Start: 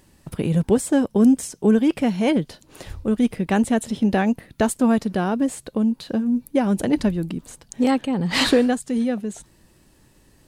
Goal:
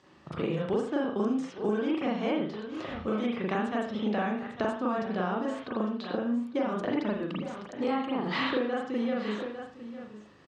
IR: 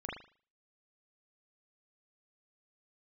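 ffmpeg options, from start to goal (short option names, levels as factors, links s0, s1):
-filter_complex "[0:a]highpass=150,equalizer=f=170:t=q:w=4:g=-4,equalizer=f=260:t=q:w=4:g=-4,equalizer=f=1200:t=q:w=4:g=9,equalizer=f=3400:t=q:w=4:g=3,lowpass=f=5900:w=0.5412,lowpass=f=5900:w=1.3066,aecho=1:1:853:0.112[s0];[1:a]atrim=start_sample=2205,afade=t=out:st=0.22:d=0.01,atrim=end_sample=10143[s1];[s0][s1]afir=irnorm=-1:irlink=0,acrossover=split=340|4000[s2][s3][s4];[s2]acompressor=threshold=0.02:ratio=4[s5];[s3]acompressor=threshold=0.0282:ratio=4[s6];[s4]acompressor=threshold=0.00112:ratio=4[s7];[s5][s6][s7]amix=inputs=3:normalize=0"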